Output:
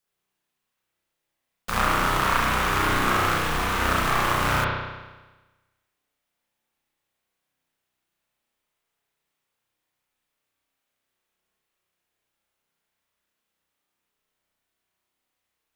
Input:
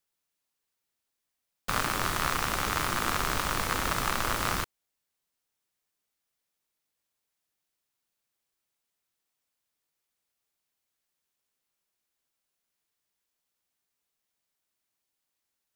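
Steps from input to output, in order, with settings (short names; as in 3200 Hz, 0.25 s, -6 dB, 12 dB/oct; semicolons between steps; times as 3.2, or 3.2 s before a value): spring tank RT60 1.2 s, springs 32 ms, chirp 50 ms, DRR -6.5 dB; 3.38–3.8 hard clip -21 dBFS, distortion -19 dB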